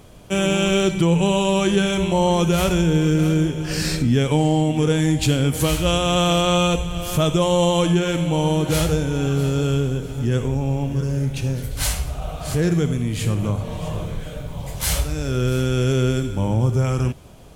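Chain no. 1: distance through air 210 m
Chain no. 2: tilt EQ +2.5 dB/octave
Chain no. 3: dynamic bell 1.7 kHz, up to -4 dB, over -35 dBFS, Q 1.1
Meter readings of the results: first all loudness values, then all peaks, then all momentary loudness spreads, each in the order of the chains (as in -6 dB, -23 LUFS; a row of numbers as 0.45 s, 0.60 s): -21.0 LUFS, -21.5 LUFS, -20.5 LUFS; -8.0 dBFS, -4.0 dBFS, -7.5 dBFS; 9 LU, 11 LU, 8 LU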